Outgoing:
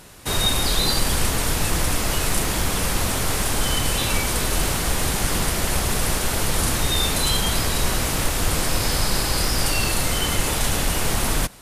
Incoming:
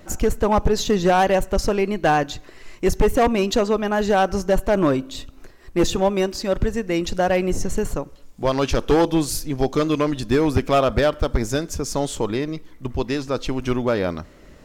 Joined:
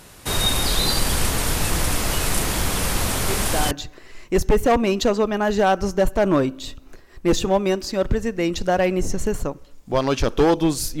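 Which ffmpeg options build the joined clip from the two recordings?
-filter_complex "[1:a]asplit=2[a][b];[0:a]apad=whole_dur=11,atrim=end=11,atrim=end=3.712[c];[b]atrim=start=2.218:end=9.51[d];[a]atrim=start=1.79:end=2.22,asetpts=PTS-STARTPTS,volume=-8.5dB,afade=t=in:d=0.004:c=hsin,afade=t=out:st=0.426:d=0.004:c=hsin,adelay=3280[e];[c][d]acrossfade=d=0.004:c1=hsin:c2=hsin[f];[f][e]amix=inputs=2:normalize=0"

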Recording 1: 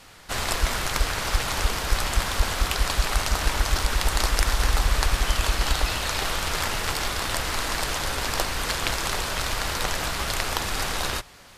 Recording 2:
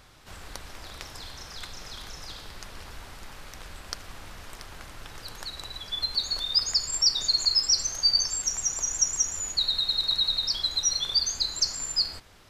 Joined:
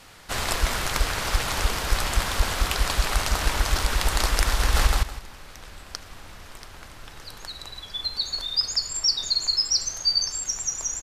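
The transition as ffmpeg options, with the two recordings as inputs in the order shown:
-filter_complex "[0:a]apad=whole_dur=11.02,atrim=end=11.02,atrim=end=4.872[a];[1:a]atrim=start=2.848:end=9[b];[a][b]acrossfade=d=0.004:c1=hsin:c2=hsin,asplit=2[c][d];[d]afade=t=in:st=4.58:d=0.01,afade=t=out:st=4.87:d=0.01,aecho=0:1:160|320|480:0.944061|0.188812|0.0377624[e];[c][e]amix=inputs=2:normalize=0"

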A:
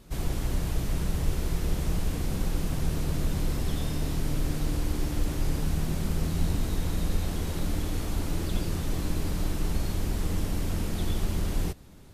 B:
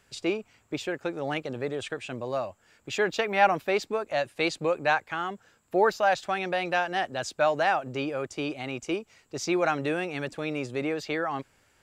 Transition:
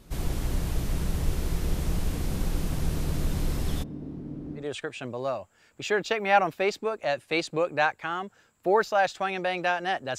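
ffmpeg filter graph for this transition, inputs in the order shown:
-filter_complex "[0:a]asplit=3[a][b][c];[a]afade=t=out:st=3.82:d=0.02[d];[b]bandpass=f=260:t=q:w=1.8:csg=0,afade=t=in:st=3.82:d=0.02,afade=t=out:st=4.67:d=0.02[e];[c]afade=t=in:st=4.67:d=0.02[f];[d][e][f]amix=inputs=3:normalize=0,apad=whole_dur=10.18,atrim=end=10.18,atrim=end=4.67,asetpts=PTS-STARTPTS[g];[1:a]atrim=start=1.63:end=7.26,asetpts=PTS-STARTPTS[h];[g][h]acrossfade=d=0.12:c1=tri:c2=tri"

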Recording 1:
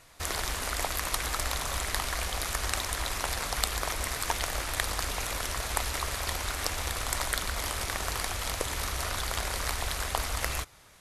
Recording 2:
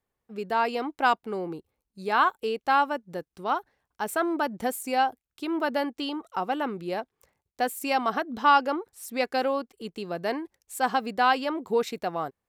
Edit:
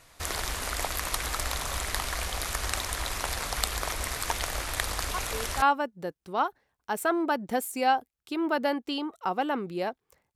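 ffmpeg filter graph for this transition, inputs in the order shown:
-filter_complex "[1:a]asplit=2[a][b];[0:a]apad=whole_dur=10.35,atrim=end=10.35,atrim=end=5.622[c];[b]atrim=start=2.728:end=7.46[d];[a]atrim=start=2.25:end=2.73,asetpts=PTS-STARTPTS,volume=-9.5dB,afade=t=in:d=0.004:c=hsin,afade=t=out:st=0.476:d=0.004:c=hsin,adelay=5140[e];[c][d]acrossfade=d=0.004:c1=hsin:c2=hsin[f];[f][e]amix=inputs=2:normalize=0"

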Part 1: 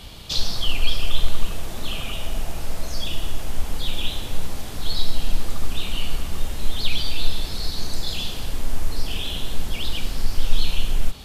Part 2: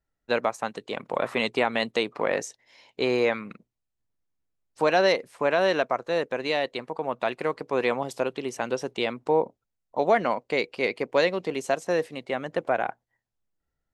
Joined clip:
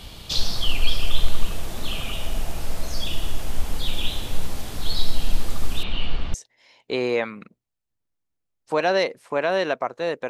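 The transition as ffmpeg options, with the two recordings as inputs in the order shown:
-filter_complex "[0:a]asettb=1/sr,asplit=3[a][b][c];[a]atrim=end=5.834[d];[b]atrim=start=5.83:end=6.34,asetpts=PTS-STARTPTS,afade=t=in:d=0.004:c=qsin,afade=t=out:st=0.506:d=0.004:c=qsin,lowpass=f=4k:w=0.5412,lowpass=f=4k:w=1.3066[e];[c]atrim=start=6.336[f];[d][e]acrossfade=d=0.004:c1=hsin:c2=qsin[g];[g][f]acrossfade=d=0.004:c1=qsin:c2=hsin,apad=whole_dur=10.29,atrim=end=10.29,atrim=end=6.342[h];[1:a]atrim=start=2.428:end=6.38[i];[h][i]acrossfade=d=0.004:c1=hsin:c2=hsin"

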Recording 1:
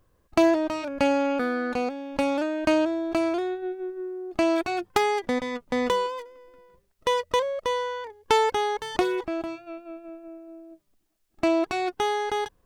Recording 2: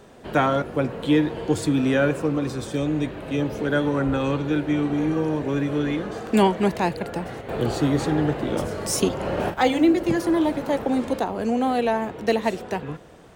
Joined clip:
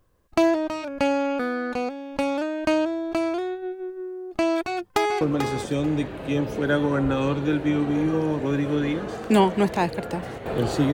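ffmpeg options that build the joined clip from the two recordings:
-filter_complex "[0:a]apad=whole_dur=10.93,atrim=end=10.93,atrim=end=5.212[a];[1:a]atrim=start=2.238:end=7.96[b];[a][b]acrossfade=d=0.004:c1=hsin:c2=hsin,asplit=2[c][d];[d]afade=t=in:st=4.52:d=0.01,afade=t=out:st=5.21:d=0.01,aecho=0:1:440|880|1320:0.473151|0.0709727|0.0106459[e];[c][e]amix=inputs=2:normalize=0"

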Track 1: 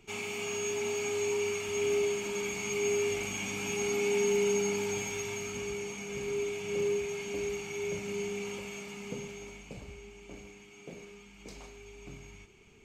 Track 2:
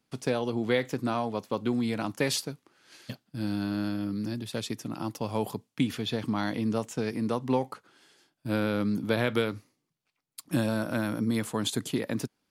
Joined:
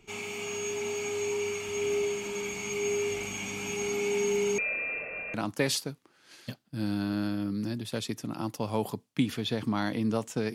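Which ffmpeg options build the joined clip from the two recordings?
-filter_complex "[0:a]asettb=1/sr,asplit=3[a][b][c];[a]atrim=end=4.584[d];[b]atrim=start=4.58:end=5.34,asetpts=PTS-STARTPTS,afade=t=in:d=0.004:c=qsin,afade=t=out:st=0.756:d=0.004:c=qsin,lowpass=f=2.4k:t=q:w=0.5098,lowpass=f=2.4k:t=q:w=0.6013,lowpass=f=2.4k:t=q:w=0.9,lowpass=f=2.4k:t=q:w=2.563,afreqshift=-2800[e];[c]atrim=start=5.336[f];[d][e]acrossfade=d=0.004:c1=hsin:c2=qsin[g];[g][f]acrossfade=d=0.004:c1=qsin:c2=hsin,apad=whole_dur=10.54,atrim=end=10.54,atrim=end=5.342[h];[1:a]atrim=start=1.948:end=7.15[i];[h][i]acrossfade=d=0.004:c1=hsin:c2=hsin"

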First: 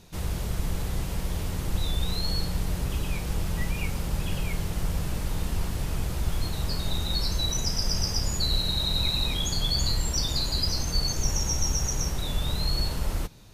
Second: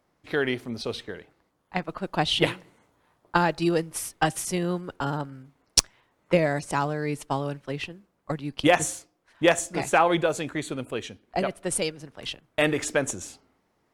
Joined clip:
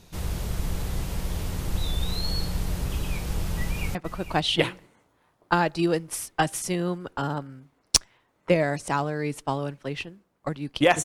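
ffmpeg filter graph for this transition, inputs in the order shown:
-filter_complex "[0:a]apad=whole_dur=11.04,atrim=end=11.04,atrim=end=3.952[a];[1:a]atrim=start=1.778:end=8.87[b];[a][b]acrossfade=d=0.004:c1=hsin:c2=hsin,asplit=2[c][d];[d]afade=t=in:st=3.59:d=0.01,afade=t=out:st=3.95:d=0.01,aecho=0:1:450|900:0.266073|0.0266073[e];[c][e]amix=inputs=2:normalize=0"

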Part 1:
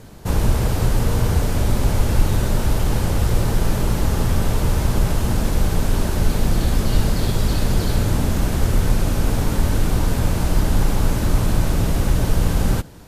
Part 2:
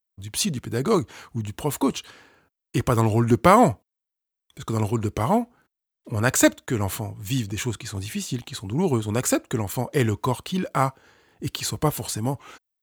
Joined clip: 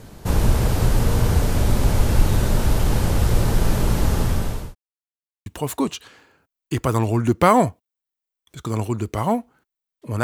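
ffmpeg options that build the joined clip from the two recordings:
-filter_complex "[0:a]apad=whole_dur=10.23,atrim=end=10.23,asplit=2[a][b];[a]atrim=end=4.75,asetpts=PTS-STARTPTS,afade=t=out:st=3.98:d=0.77:c=qsin[c];[b]atrim=start=4.75:end=5.46,asetpts=PTS-STARTPTS,volume=0[d];[1:a]atrim=start=1.49:end=6.26,asetpts=PTS-STARTPTS,afade=t=in:d=0.004:c=hsin[e];[c][d][e]concat=n=3:v=0:a=1"

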